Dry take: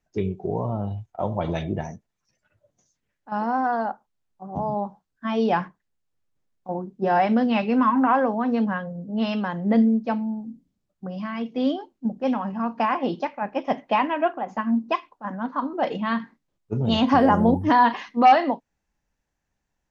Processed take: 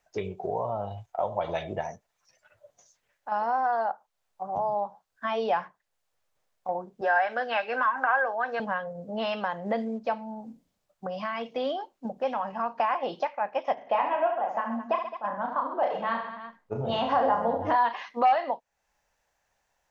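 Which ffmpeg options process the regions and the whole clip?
-filter_complex "[0:a]asettb=1/sr,asplit=3[a][b][c];[a]atrim=end=7.014[d];[b]atrim=start=7.01:end=8.6,asetpts=PTS-STARTPTS,afade=t=in:d=0.004:c=qsin,afade=t=out:st=1.586:d=0.004:c=qsin,highpass=410,equalizer=f=1.6k:w=5.2:g=14.5,bandreject=f=980:w=18[e];[c]atrim=start=8.596[f];[d][e]acrossfade=d=0.004:c1=hsin:c2=qsin[g];[g][f]acrossfade=d=0.004:c1=qsin:c2=hsin,asettb=1/sr,asplit=3[h][i][j];[h]atrim=end=13.744[k];[i]atrim=start=13.74:end=17.76,asetpts=PTS-STARTPTS,afade=t=in:d=0.004:c=qsin,afade=t=out:st=4.016:d=0.004:c=qsin,highshelf=f=2.4k:g=-10,aecho=1:1:30|72|130.8|213.1|328.4:0.631|0.398|0.251|0.158|0.1,atrim=end_sample=177282[l];[j]atrim=start=17.756[m];[k][l]acrossfade=d=0.004:c1=hsin:c2=qsin[n];[n][m]acrossfade=d=0.004:c1=qsin:c2=hsin,acrossover=split=4800[o][p];[p]acompressor=threshold=-58dB:ratio=4:attack=1:release=60[q];[o][q]amix=inputs=2:normalize=0,lowshelf=f=410:t=q:w=1.5:g=-11.5,acompressor=threshold=-41dB:ratio=2,volume=7.5dB"

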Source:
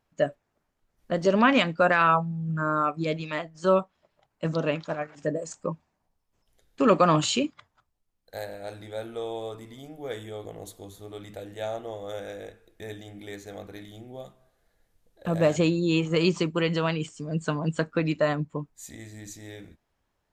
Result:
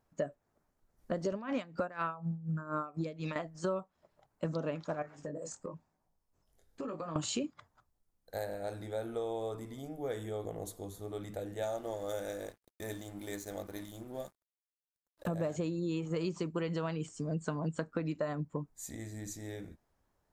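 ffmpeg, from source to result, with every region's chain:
-filter_complex "[0:a]asettb=1/sr,asplit=3[a][b][c];[a]atrim=end=1.324[d];[b]atrim=start=1.32:end=3.36,asetpts=PTS-STARTPTS,afade=t=in:d=0.004:c=qsin,afade=t=out:st=2.036:d=0.004:c=qsin,acompressor=mode=upward:threshold=-23dB:ratio=2.5:attack=3.2:release=140:knee=2.83:detection=peak,aeval=exprs='val(0)*pow(10,-18*(0.5-0.5*cos(2*PI*4.1*n/s))/20)':c=same[e];[c]atrim=start=3.356[f];[d][e]acrossfade=d=0.004:c1=hsin:c2=qsin[g];[g][f]acrossfade=d=0.004:c1=qsin:c2=hsin,asettb=1/sr,asplit=3[h][i][j];[h]atrim=end=5.024[k];[i]atrim=start=5.02:end=7.16,asetpts=PTS-STARTPTS,afade=t=in:d=0.004:c=qsin,afade=t=out:st=2.136:d=0.004:c=qsin,flanger=delay=18.5:depth=4.1:speed=1,acompressor=threshold=-36dB:ratio=10:attack=3.2:release=140:knee=1:detection=peak[l];[j]atrim=start=7.156[m];[k][l]acrossfade=d=0.004:c1=hsin:c2=qsin[n];[n][m]acrossfade=d=0.004:c1=qsin:c2=hsin,asettb=1/sr,asplit=3[o][p][q];[o]atrim=end=11.624[r];[p]atrim=start=11.62:end=15.28,asetpts=PTS-STARTPTS,afade=t=in:d=0.004:c=qsin,afade=t=out:st=3.656:d=0.004:c=qsin,highshelf=f=4.8k:g=9.5,aecho=1:1:3.4:0.31,atrim=end_sample=161406,aeval=exprs='sgn(val(0))*max(abs(val(0))-0.00237,0)':c=same[s];[q]atrim=start=15.276[t];[r][s]acrossfade=d=0.004:c1=hsin:c2=qsin[u];[u][t]acrossfade=d=0.004:c1=qsin:c2=hsin,equalizer=f=2.9k:t=o:w=1.4:g=-8,acompressor=threshold=-32dB:ratio=6"

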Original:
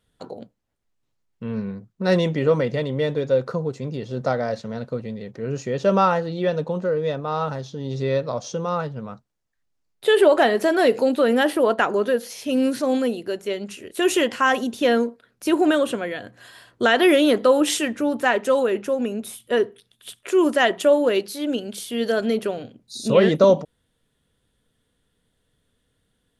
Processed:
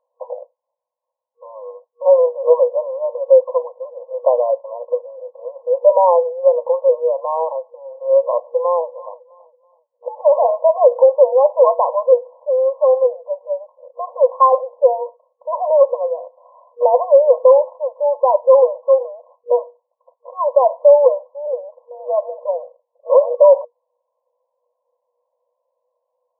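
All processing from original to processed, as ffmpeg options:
-filter_complex "[0:a]asettb=1/sr,asplit=3[a][b][c];[a]atrim=end=8.384[d];[b]atrim=start=8.38:end=10.45,asetpts=PTS-STARTPTS,afade=t=in:d=0.004:c=qsin,afade=t=out:st=2.066:d=0.004:c=qsin,aecho=1:1:327|654|981:0.1|0.032|0.0102,atrim=end_sample=91287,acompressor=threshold=-17dB:ratio=5:attack=3.2:release=140:knee=1:detection=peak[e];[c]atrim=start=10.446[f];[d][e]acrossfade=d=0.004:c1=hsin:c2=qsin[g];[g][f]acrossfade=d=0.004:c1=qsin:c2=hsin,afftfilt=real='re*between(b*sr/4096,480,1100)':imag='im*between(b*sr/4096,480,1100)':win_size=4096:overlap=0.75,equalizer=f=760:t=o:w=0.32:g=-9.5,alimiter=level_in=13dB:limit=-1dB:release=50:level=0:latency=1,volume=-1dB"

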